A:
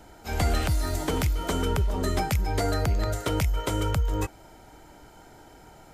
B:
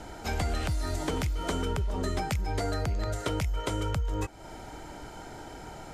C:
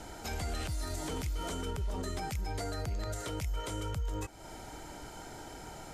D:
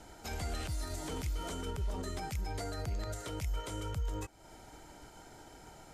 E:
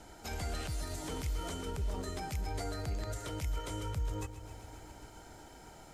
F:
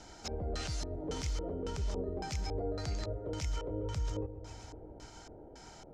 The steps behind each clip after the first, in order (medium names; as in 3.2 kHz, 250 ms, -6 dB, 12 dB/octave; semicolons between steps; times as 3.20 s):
low-pass 9.7 kHz 12 dB/octave; compression 3:1, threshold -38 dBFS, peak gain reduction 13.5 dB; trim +7 dB
treble shelf 4.9 kHz +8 dB; peak limiter -24.5 dBFS, peak gain reduction 9.5 dB; trim -3.5 dB
upward expansion 1.5:1, over -48 dBFS
bit-crushed delay 133 ms, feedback 80%, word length 11-bit, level -14 dB
LFO low-pass square 1.8 Hz 500–5800 Hz